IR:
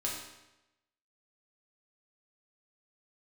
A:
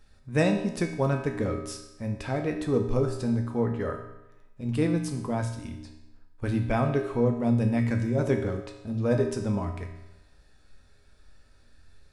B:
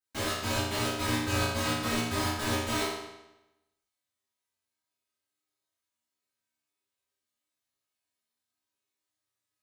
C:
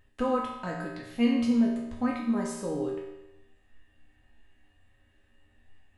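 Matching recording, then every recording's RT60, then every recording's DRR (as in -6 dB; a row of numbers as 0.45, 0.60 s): C; 0.95, 0.95, 0.95 s; 3.0, -12.5, -4.0 dB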